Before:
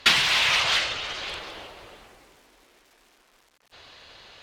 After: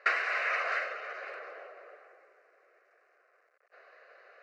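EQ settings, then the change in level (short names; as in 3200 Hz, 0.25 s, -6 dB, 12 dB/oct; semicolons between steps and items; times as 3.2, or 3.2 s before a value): HPF 450 Hz 24 dB/oct; LPF 1800 Hz 12 dB/oct; fixed phaser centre 910 Hz, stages 6; 0.0 dB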